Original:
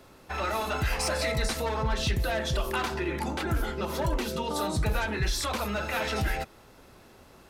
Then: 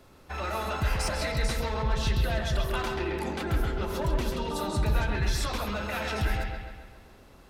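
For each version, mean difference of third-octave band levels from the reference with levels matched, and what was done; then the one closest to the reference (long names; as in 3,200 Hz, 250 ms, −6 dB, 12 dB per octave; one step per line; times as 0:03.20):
3.0 dB: low-shelf EQ 110 Hz +6.5 dB
on a send: bucket-brigade delay 134 ms, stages 4,096, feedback 54%, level −5 dB
on the sum: level −3.5 dB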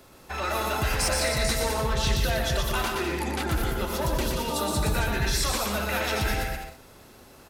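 4.5 dB: high-shelf EQ 5,800 Hz +7 dB
bouncing-ball delay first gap 120 ms, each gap 0.7×, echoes 5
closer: first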